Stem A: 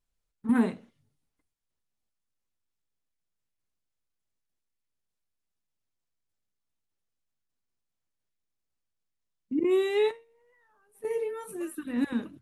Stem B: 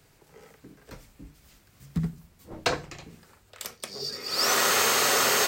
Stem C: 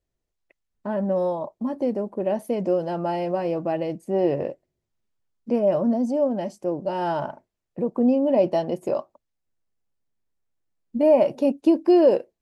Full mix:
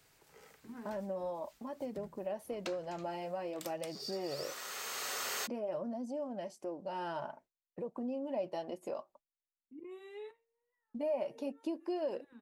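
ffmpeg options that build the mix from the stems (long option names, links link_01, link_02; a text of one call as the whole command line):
ffmpeg -i stem1.wav -i stem2.wav -i stem3.wav -filter_complex "[0:a]highshelf=frequency=2200:gain=-9.5,adelay=200,volume=-12dB[link_01];[1:a]acompressor=threshold=-29dB:ratio=12,volume=-4dB[link_02];[2:a]agate=range=-33dB:threshold=-46dB:ratio=3:detection=peak,volume=2dB,asplit=2[link_03][link_04];[link_04]apad=whole_len=241468[link_05];[link_02][link_05]sidechaincompress=threshold=-25dB:ratio=8:attack=33:release=1200[link_06];[link_01][link_03]amix=inputs=2:normalize=0,flanger=delay=0.2:depth=5.3:regen=-53:speed=0.49:shape=triangular,acompressor=threshold=-39dB:ratio=2,volume=0dB[link_07];[link_06][link_07]amix=inputs=2:normalize=0,lowshelf=frequency=460:gain=-9.5" out.wav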